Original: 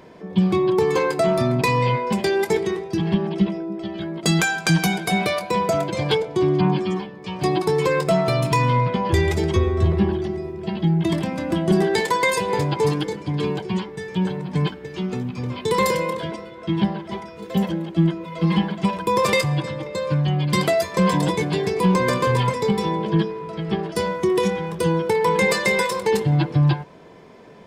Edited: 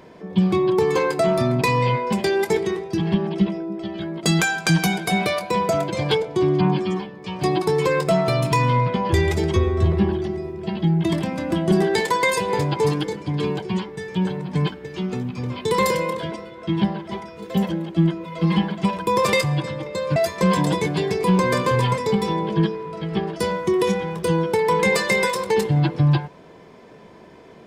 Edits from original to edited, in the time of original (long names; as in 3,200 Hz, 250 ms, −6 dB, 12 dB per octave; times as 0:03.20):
0:20.16–0:20.72: remove